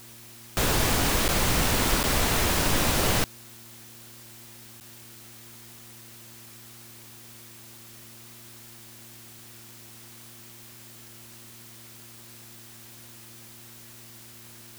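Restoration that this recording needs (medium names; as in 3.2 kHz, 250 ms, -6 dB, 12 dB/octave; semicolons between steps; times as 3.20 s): de-hum 116.1 Hz, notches 3; interpolate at 1.28/2.03/4.80 s, 8.9 ms; noise print and reduce 25 dB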